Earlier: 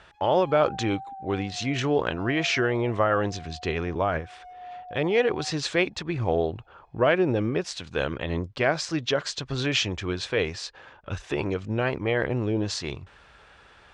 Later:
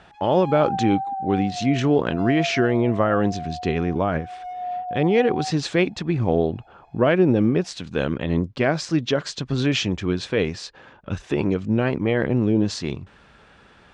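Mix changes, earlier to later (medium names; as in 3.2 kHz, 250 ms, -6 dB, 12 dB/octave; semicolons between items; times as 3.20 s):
background +10.5 dB; master: add peaking EQ 210 Hz +11 dB 1.5 oct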